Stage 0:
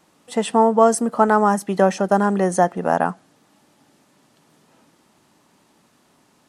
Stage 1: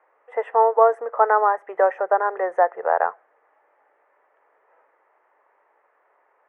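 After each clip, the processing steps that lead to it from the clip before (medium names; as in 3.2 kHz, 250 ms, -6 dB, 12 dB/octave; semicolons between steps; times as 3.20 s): elliptic band-pass 460–2000 Hz, stop band 40 dB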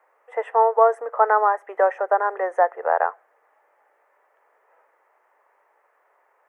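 tone controls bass -13 dB, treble +9 dB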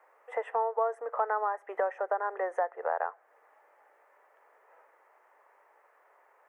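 compression 2.5:1, threshold -32 dBFS, peak gain reduction 14 dB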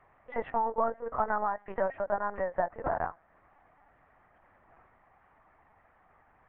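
LPC vocoder at 8 kHz pitch kept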